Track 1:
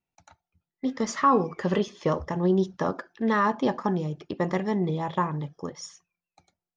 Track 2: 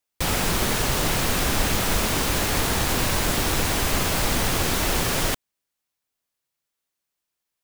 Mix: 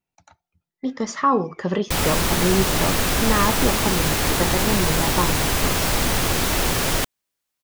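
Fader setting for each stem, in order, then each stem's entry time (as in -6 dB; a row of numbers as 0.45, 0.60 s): +2.0, +2.0 dB; 0.00, 1.70 s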